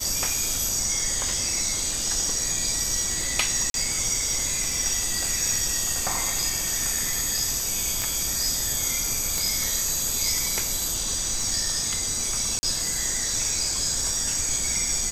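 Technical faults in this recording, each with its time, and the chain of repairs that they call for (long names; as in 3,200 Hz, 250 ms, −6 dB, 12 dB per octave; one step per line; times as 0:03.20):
surface crackle 47 per second −32 dBFS
0:03.70–0:03.74: drop-out 42 ms
0:08.02: click
0:09.38: click
0:12.59–0:12.63: drop-out 40 ms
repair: click removal
repair the gap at 0:03.70, 42 ms
repair the gap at 0:12.59, 40 ms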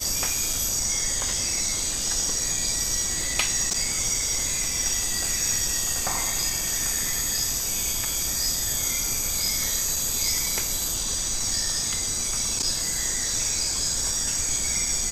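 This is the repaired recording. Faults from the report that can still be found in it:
0:09.38: click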